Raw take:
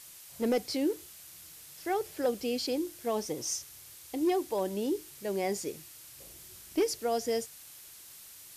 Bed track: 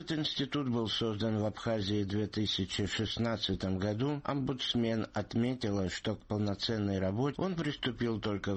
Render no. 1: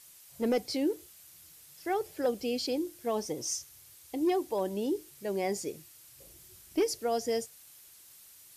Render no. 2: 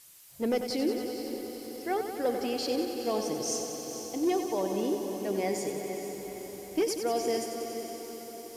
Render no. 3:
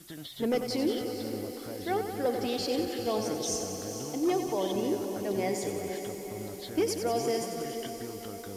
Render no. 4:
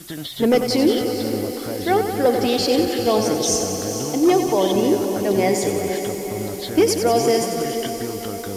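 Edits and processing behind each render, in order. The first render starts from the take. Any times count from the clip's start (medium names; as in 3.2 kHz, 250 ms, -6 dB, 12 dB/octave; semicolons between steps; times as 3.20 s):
noise reduction 6 dB, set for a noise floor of -51 dBFS
echo that smears into a reverb 481 ms, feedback 63%, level -9.5 dB; bit-crushed delay 93 ms, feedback 80%, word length 10-bit, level -8.5 dB
add bed track -10 dB
trim +12 dB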